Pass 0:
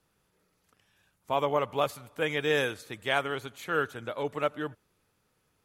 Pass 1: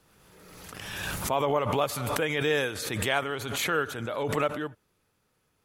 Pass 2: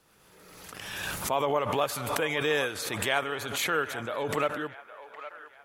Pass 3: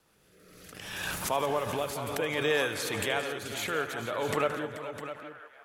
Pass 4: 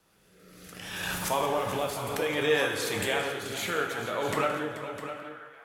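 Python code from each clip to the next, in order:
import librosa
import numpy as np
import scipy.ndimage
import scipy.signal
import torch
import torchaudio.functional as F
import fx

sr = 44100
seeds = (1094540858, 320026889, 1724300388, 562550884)

y1 = fx.pre_swell(x, sr, db_per_s=30.0)
y2 = fx.low_shelf(y1, sr, hz=220.0, db=-7.0)
y2 = fx.echo_wet_bandpass(y2, sr, ms=812, feedback_pct=40, hz=1200.0, wet_db=-12.0)
y3 = fx.rotary(y2, sr, hz=0.65)
y3 = fx.echo_multitap(y3, sr, ms=(77, 173, 434, 656), db=(-17.5, -14.5, -13.0, -11.0))
y4 = fx.rev_plate(y3, sr, seeds[0], rt60_s=0.82, hf_ratio=0.9, predelay_ms=0, drr_db=2.5)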